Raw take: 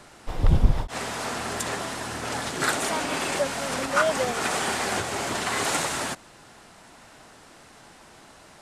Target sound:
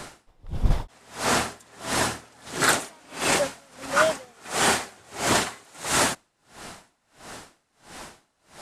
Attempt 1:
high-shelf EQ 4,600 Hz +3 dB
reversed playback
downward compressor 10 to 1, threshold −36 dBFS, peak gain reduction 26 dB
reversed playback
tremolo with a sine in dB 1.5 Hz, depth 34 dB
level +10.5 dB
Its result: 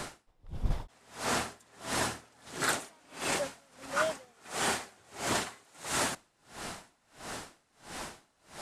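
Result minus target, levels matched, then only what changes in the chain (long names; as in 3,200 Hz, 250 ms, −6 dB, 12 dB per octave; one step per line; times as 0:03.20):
downward compressor: peak gain reduction +9.5 dB
change: downward compressor 10 to 1, threshold −25.5 dBFS, peak gain reduction 16.5 dB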